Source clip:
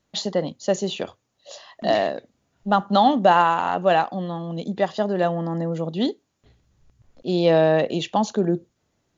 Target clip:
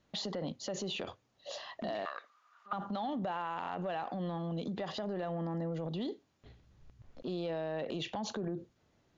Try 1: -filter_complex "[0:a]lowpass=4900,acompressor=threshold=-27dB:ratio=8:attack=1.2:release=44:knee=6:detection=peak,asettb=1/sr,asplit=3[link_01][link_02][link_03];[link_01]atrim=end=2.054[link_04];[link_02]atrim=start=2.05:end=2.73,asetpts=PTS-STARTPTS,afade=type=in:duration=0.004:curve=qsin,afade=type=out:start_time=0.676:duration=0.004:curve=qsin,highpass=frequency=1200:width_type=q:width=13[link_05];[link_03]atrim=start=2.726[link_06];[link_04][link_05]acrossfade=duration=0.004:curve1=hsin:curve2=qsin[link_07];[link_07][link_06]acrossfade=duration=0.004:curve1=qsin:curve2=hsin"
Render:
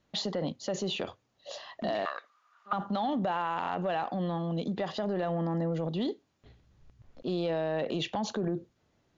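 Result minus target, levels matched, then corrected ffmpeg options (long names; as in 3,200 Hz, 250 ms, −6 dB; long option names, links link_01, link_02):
downward compressor: peak gain reduction −6 dB
-filter_complex "[0:a]lowpass=4900,acompressor=threshold=-34dB:ratio=8:attack=1.2:release=44:knee=6:detection=peak,asettb=1/sr,asplit=3[link_01][link_02][link_03];[link_01]atrim=end=2.054[link_04];[link_02]atrim=start=2.05:end=2.73,asetpts=PTS-STARTPTS,afade=type=in:duration=0.004:curve=qsin,afade=type=out:start_time=0.676:duration=0.004:curve=qsin,highpass=frequency=1200:width_type=q:width=13[link_05];[link_03]atrim=start=2.726[link_06];[link_04][link_05]acrossfade=duration=0.004:curve1=hsin:curve2=qsin[link_07];[link_07][link_06]acrossfade=duration=0.004:curve1=qsin:curve2=hsin"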